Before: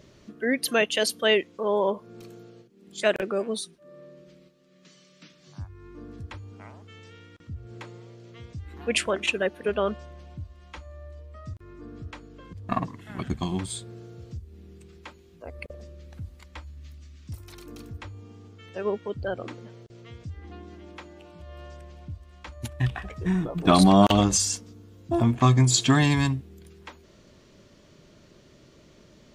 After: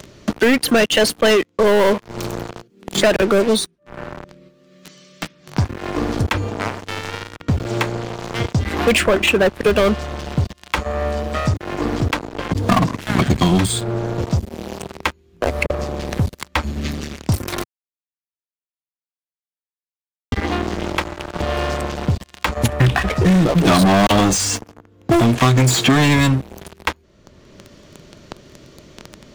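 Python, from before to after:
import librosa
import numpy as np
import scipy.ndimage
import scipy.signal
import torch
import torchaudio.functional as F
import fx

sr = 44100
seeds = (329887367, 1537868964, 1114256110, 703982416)

y = fx.bass_treble(x, sr, bass_db=-5, treble_db=0, at=(23.85, 26.4))
y = fx.edit(y, sr, fx.silence(start_s=17.64, length_s=2.68), tone=tone)
y = fx.leveller(y, sr, passes=5)
y = fx.band_squash(y, sr, depth_pct=70)
y = y * 10.0 ** (-1.0 / 20.0)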